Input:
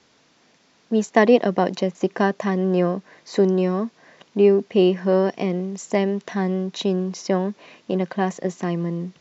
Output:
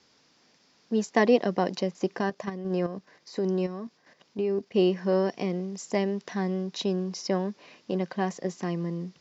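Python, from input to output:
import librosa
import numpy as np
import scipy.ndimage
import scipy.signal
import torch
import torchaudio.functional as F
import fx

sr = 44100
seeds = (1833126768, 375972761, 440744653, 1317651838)

y = fx.peak_eq(x, sr, hz=5000.0, db=8.0, octaves=0.36)
y = fx.notch(y, sr, hz=660.0, q=20.0)
y = fx.level_steps(y, sr, step_db=10, at=(2.19, 4.75))
y = F.gain(torch.from_numpy(y), -6.0).numpy()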